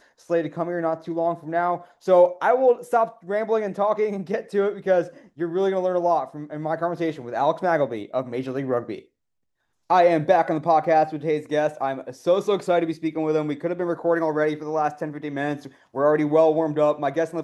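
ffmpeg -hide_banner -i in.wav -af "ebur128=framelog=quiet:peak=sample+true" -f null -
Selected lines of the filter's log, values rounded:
Integrated loudness:
  I:         -22.9 LUFS
  Threshold: -33.1 LUFS
Loudness range:
  LRA:         3.5 LU
  Threshold: -43.2 LUFS
  LRA low:   -25.0 LUFS
  LRA high:  -21.5 LUFS
Sample peak:
  Peak:       -5.5 dBFS
True peak:
  Peak:       -5.5 dBFS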